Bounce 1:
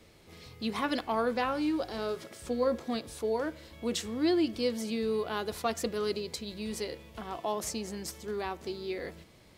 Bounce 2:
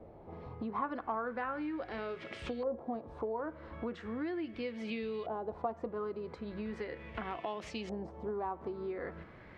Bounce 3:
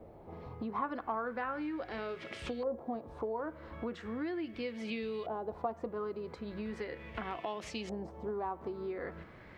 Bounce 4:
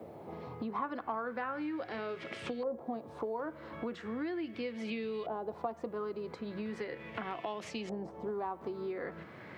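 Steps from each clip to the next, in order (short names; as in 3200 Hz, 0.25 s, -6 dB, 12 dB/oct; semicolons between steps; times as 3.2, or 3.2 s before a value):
compressor 6:1, threshold -41 dBFS, peak gain reduction 16 dB; LFO low-pass saw up 0.38 Hz 710–3100 Hz; gain +4 dB
high shelf 6300 Hz +9 dB
HPF 100 Hz 24 dB/oct; three-band squash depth 40%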